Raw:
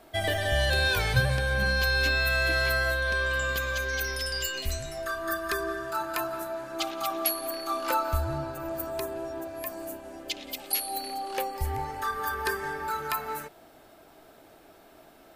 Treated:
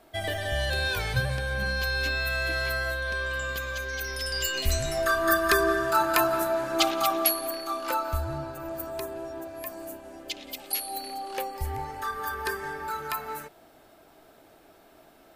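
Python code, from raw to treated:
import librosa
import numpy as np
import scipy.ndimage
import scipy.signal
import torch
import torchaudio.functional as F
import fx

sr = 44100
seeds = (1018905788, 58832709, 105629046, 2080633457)

y = fx.gain(x, sr, db=fx.line((4.01, -3.0), (4.9, 8.0), (6.84, 8.0), (7.77, -1.5)))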